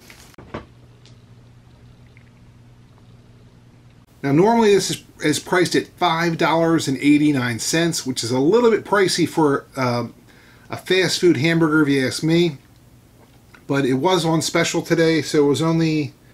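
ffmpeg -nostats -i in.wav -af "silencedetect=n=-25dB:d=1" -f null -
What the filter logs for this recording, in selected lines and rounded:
silence_start: 0.59
silence_end: 4.24 | silence_duration: 3.65
silence_start: 12.53
silence_end: 13.70 | silence_duration: 1.17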